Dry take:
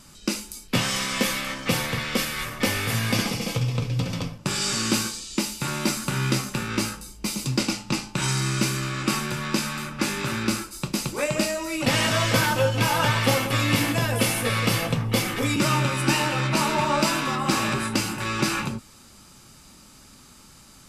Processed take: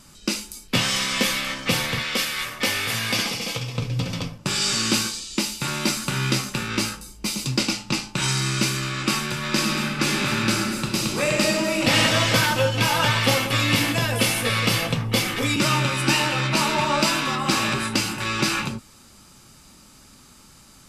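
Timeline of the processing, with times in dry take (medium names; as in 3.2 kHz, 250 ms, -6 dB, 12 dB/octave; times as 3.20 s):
2.02–3.78 s: bass shelf 280 Hz -8.5 dB
9.38–11.95 s: reverb throw, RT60 2.2 s, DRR 0 dB
whole clip: dynamic bell 3.6 kHz, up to +5 dB, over -39 dBFS, Q 0.72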